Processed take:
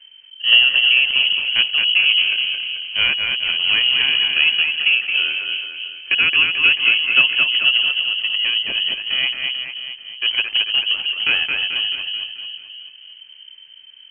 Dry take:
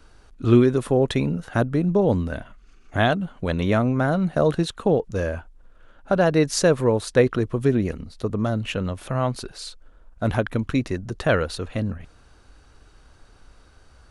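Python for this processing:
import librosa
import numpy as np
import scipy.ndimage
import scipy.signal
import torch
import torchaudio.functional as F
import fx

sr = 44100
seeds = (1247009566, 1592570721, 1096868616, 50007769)

y = scipy.signal.medfilt(x, 25)
y = fx.echo_split(y, sr, split_hz=350.0, low_ms=313, high_ms=219, feedback_pct=52, wet_db=-4.0)
y = fx.freq_invert(y, sr, carrier_hz=3100)
y = y * 10.0 ** (2.5 / 20.0)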